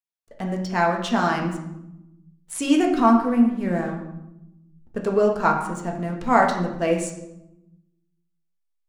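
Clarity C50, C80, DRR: 6.0 dB, 8.5 dB, 0.5 dB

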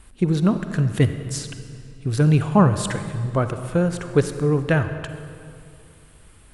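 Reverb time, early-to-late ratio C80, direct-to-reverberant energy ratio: 2.5 s, 10.5 dB, 9.0 dB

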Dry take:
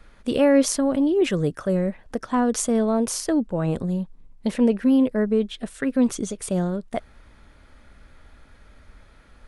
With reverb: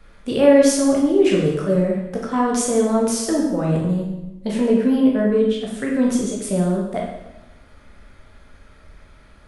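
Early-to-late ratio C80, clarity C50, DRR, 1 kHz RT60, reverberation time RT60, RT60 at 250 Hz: 5.0 dB, 2.5 dB, -3.0 dB, 0.90 s, 0.95 s, 1.1 s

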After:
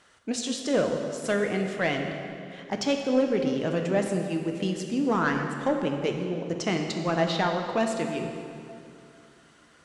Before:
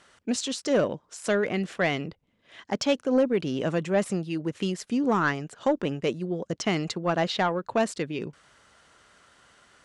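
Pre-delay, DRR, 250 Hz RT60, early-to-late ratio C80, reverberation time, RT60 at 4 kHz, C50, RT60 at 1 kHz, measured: 5 ms, 3.0 dB, 3.0 s, 5.5 dB, 2.6 s, 2.0 s, 4.5 dB, 2.5 s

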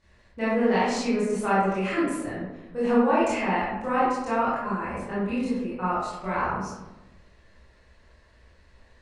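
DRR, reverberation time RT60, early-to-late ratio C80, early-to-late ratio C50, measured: -11.0 dB, 1.0 s, 2.5 dB, -1.0 dB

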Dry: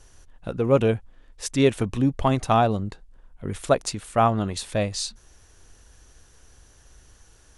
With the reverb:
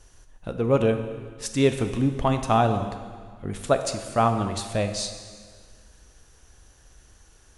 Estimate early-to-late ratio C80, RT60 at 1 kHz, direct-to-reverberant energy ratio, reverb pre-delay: 10.0 dB, 1.8 s, 7.0 dB, 5 ms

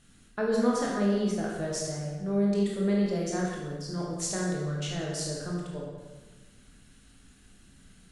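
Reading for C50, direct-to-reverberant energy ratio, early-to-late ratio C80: 0.0 dB, -3.5 dB, 2.5 dB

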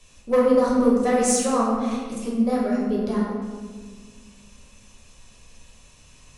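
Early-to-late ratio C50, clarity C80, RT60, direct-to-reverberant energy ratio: 0.0 dB, 2.0 dB, 1.6 s, -6.0 dB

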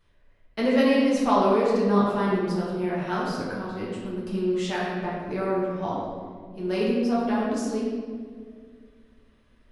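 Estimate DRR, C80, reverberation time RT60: -6.5 dB, 1.0 dB, 2.0 s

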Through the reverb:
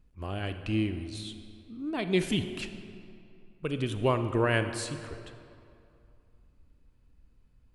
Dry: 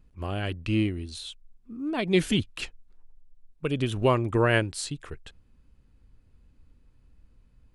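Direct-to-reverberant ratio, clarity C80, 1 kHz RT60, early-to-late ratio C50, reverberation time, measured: 8.5 dB, 10.5 dB, 2.6 s, 9.0 dB, 2.6 s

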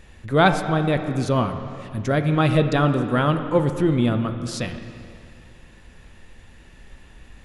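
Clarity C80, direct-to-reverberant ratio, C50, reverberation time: 9.5 dB, 7.0 dB, 8.5 dB, 2.4 s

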